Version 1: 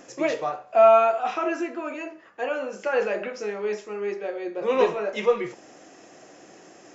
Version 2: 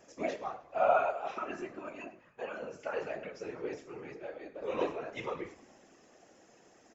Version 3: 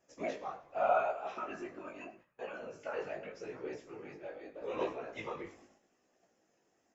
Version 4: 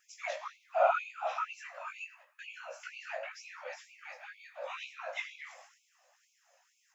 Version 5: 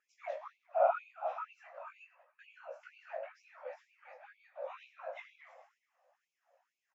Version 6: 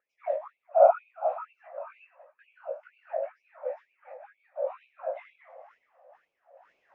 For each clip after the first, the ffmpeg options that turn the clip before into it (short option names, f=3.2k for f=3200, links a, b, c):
-filter_complex "[0:a]flanger=delay=3.3:depth=3.7:regen=-50:speed=0.33:shape=sinusoidal,afftfilt=real='hypot(re,im)*cos(2*PI*random(0))':imag='hypot(re,im)*sin(2*PI*random(1))':win_size=512:overlap=0.75,asplit=6[a][b][c][d][e][f];[b]adelay=103,afreqshift=-41,volume=-19.5dB[g];[c]adelay=206,afreqshift=-82,volume=-23.9dB[h];[d]adelay=309,afreqshift=-123,volume=-28.4dB[i];[e]adelay=412,afreqshift=-164,volume=-32.8dB[j];[f]adelay=515,afreqshift=-205,volume=-37.2dB[k];[a][g][h][i][j][k]amix=inputs=6:normalize=0,volume=-2dB"
-af "agate=range=-11dB:threshold=-57dB:ratio=16:detection=peak,flanger=delay=15.5:depth=5.4:speed=0.82"
-filter_complex "[0:a]asplit=2[a][b];[b]acompressor=threshold=-45dB:ratio=6,volume=-3dB[c];[a][c]amix=inputs=2:normalize=0,afftfilt=real='re*gte(b*sr/1024,490*pow(2200/490,0.5+0.5*sin(2*PI*2.1*pts/sr)))':imag='im*gte(b*sr/1024,490*pow(2200/490,0.5+0.5*sin(2*PI*2.1*pts/sr)))':win_size=1024:overlap=0.75,volume=5dB"
-filter_complex "[0:a]bandpass=f=430:t=q:w=0.91:csg=0,asplit=2[a][b];[b]adelay=414,volume=-25dB,highshelf=f=4k:g=-9.32[c];[a][c]amix=inputs=2:normalize=0,volume=1dB"
-af "lowpass=2.3k,equalizer=f=550:t=o:w=1.3:g=14,areverse,acompressor=mode=upward:threshold=-46dB:ratio=2.5,areverse,volume=-1.5dB"